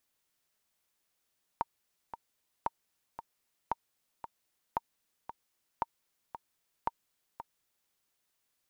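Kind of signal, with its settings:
click track 114 BPM, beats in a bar 2, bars 6, 925 Hz, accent 11.5 dB −16.5 dBFS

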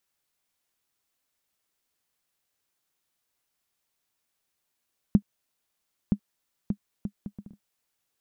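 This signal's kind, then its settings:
bouncing ball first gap 0.97 s, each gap 0.6, 203 Hz, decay 73 ms −7.5 dBFS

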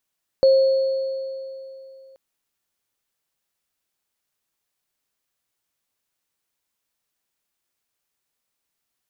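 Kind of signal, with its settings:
inharmonic partials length 1.73 s, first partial 534 Hz, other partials 4,370 Hz, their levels −20 dB, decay 2.91 s, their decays 2.50 s, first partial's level −10 dB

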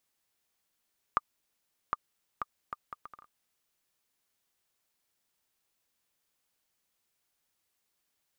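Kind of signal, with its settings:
bouncing ball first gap 0.76 s, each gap 0.64, 1,200 Hz, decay 30 ms −12.5 dBFS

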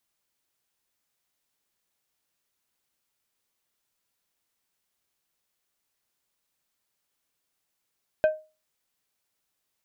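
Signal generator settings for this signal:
struck glass plate, lowest mode 622 Hz, decay 0.30 s, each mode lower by 11 dB, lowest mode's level −14 dB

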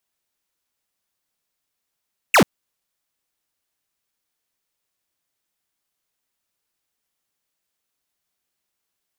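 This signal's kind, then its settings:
single falling chirp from 2,900 Hz, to 140 Hz, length 0.09 s square, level −12 dB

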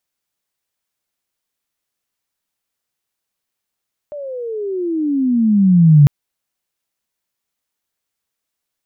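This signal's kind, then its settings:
glide logarithmic 600 Hz → 140 Hz −25.5 dBFS → −3.5 dBFS 1.95 s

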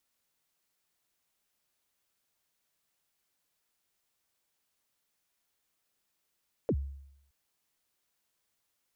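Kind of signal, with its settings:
synth kick length 0.62 s, from 570 Hz, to 69 Hz, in 61 ms, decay 0.78 s, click off, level −23 dB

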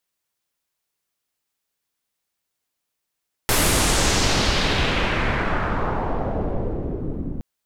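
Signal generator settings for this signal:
filter sweep on noise pink, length 3.92 s lowpass, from 13,000 Hz, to 230 Hz, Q 1.6, exponential, gain ramp −7.5 dB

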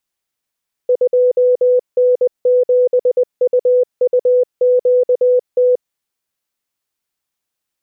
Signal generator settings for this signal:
Morse code "2N7UUQT" 20 words per minute 498 Hz −8.5 dBFS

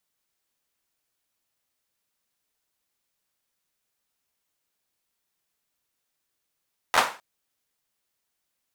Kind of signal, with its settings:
synth clap length 0.26 s, apart 12 ms, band 990 Hz, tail 0.35 s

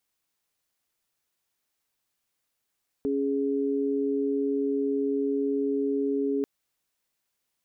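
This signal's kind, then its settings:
held notes C#4/G#4 sine, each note −26.5 dBFS 3.39 s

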